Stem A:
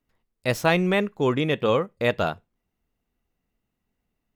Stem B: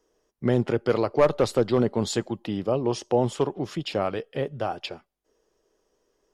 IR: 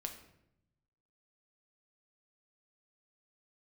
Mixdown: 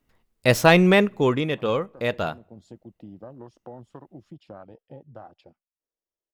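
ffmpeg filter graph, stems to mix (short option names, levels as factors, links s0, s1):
-filter_complex "[0:a]acontrast=48,afade=t=out:st=0.92:d=0.56:silence=0.375837,asplit=3[s0][s1][s2];[s1]volume=0.0841[s3];[1:a]equalizer=f=420:w=5:g=-10.5,acompressor=threshold=0.0398:ratio=5,afwtdn=0.0158,adelay=550,volume=0.316[s4];[s2]apad=whole_len=303541[s5];[s4][s5]sidechaincompress=threshold=0.0316:ratio=8:attack=45:release=622[s6];[2:a]atrim=start_sample=2205[s7];[s3][s7]afir=irnorm=-1:irlink=0[s8];[s0][s6][s8]amix=inputs=3:normalize=0"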